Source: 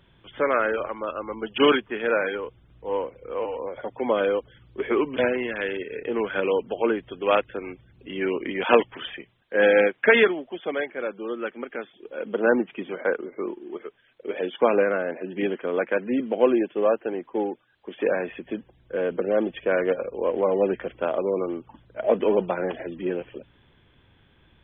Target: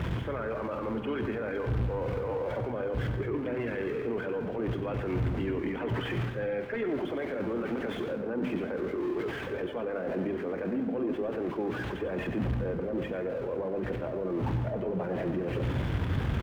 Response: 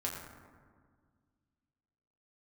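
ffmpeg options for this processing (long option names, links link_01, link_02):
-filter_complex "[0:a]aeval=exprs='val(0)+0.5*0.0316*sgn(val(0))':channel_layout=same,highpass=46,acontrast=80,bandreject=frequency=50:width_type=h:width=6,bandreject=frequency=100:width_type=h:width=6,bandreject=frequency=150:width_type=h:width=6,bandreject=frequency=200:width_type=h:width=6,bandreject=frequency=250:width_type=h:width=6,areverse,acompressor=threshold=-23dB:ratio=16,areverse,highshelf=frequency=2700:gain=-9.5,aecho=1:1:17|53|76:0.133|0.141|0.141,alimiter=limit=-22dB:level=0:latency=1:release=52,asplit=2[link_01][link_02];[1:a]atrim=start_sample=2205,adelay=150[link_03];[link_02][link_03]afir=irnorm=-1:irlink=0,volume=-10dB[link_04];[link_01][link_04]amix=inputs=2:normalize=0,atempo=1.5,bass=frequency=250:gain=8,treble=frequency=4000:gain=-12,volume=-5dB"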